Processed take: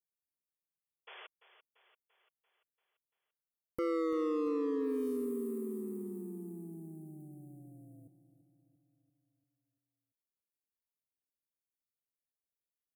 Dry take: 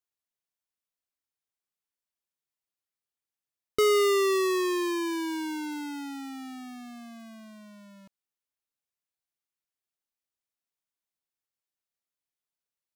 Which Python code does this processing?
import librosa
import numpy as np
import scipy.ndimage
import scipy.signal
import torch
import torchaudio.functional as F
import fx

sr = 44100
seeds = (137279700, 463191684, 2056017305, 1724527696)

p1 = scipy.signal.sosfilt(scipy.signal.cheby2(4, 40, [960.0, 5900.0], 'bandstop', fs=sr, output='sos'), x)
p2 = np.clip(p1, -10.0 ** (-27.5 / 20.0), 10.0 ** (-27.5 / 20.0))
p3 = p2 * np.sin(2.0 * np.pi * 80.0 * np.arange(len(p2)) / sr)
p4 = fx.spec_paint(p3, sr, seeds[0], shape='noise', start_s=1.07, length_s=0.2, low_hz=360.0, high_hz=3500.0, level_db=-50.0)
p5 = p4 + fx.echo_feedback(p4, sr, ms=341, feedback_pct=57, wet_db=-14, dry=0)
y = p5 * librosa.db_to_amplitude(-1.0)